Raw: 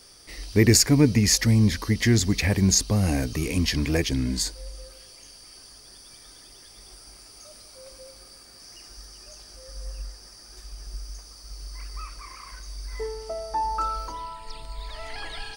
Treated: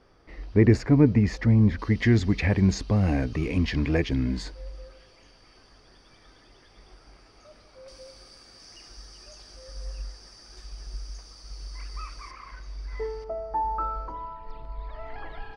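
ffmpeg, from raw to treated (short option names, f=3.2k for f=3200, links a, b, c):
-af "asetnsamples=n=441:p=0,asendcmd='1.79 lowpass f 2500;7.88 lowpass f 5400;12.31 lowpass f 2800;13.24 lowpass f 1300',lowpass=1.5k"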